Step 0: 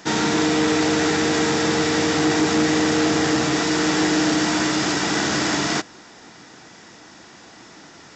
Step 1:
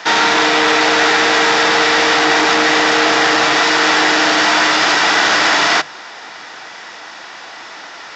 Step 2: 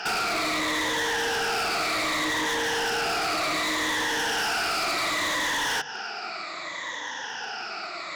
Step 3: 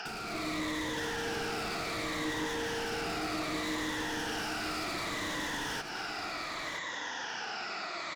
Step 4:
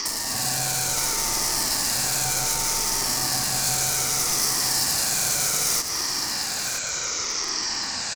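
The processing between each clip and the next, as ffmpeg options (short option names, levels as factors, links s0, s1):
-filter_complex "[0:a]acrossover=split=560 5200:gain=0.1 1 0.0891[s0][s1][s2];[s0][s1][s2]amix=inputs=3:normalize=0,bandreject=f=50:t=h:w=6,bandreject=f=100:t=h:w=6,bandreject=f=150:t=h:w=6,asplit=2[s3][s4];[s4]alimiter=limit=0.0841:level=0:latency=1:release=22,volume=1.26[s5];[s3][s5]amix=inputs=2:normalize=0,volume=2.51"
-af "afftfilt=real='re*pow(10,17/40*sin(2*PI*(1.1*log(max(b,1)*sr/1024/100)/log(2)-(-0.66)*(pts-256)/sr)))':imag='im*pow(10,17/40*sin(2*PI*(1.1*log(max(b,1)*sr/1024/100)/log(2)-(-0.66)*(pts-256)/sr)))':win_size=1024:overlap=0.75,acompressor=threshold=0.2:ratio=6,volume=9.44,asoftclip=hard,volume=0.106,volume=0.562"
-filter_complex "[0:a]acrossover=split=340[s0][s1];[s1]acompressor=threshold=0.0158:ratio=6[s2];[s0][s2]amix=inputs=2:normalize=0,aecho=1:1:974:0.398,dynaudnorm=f=120:g=5:m=1.58,volume=0.631"
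-af "aeval=exprs='val(0)*sin(2*PI*440*n/s)':c=same,aexciter=amount=5.5:drive=9:freq=4800,aecho=1:1:225:0.0891,volume=2.24"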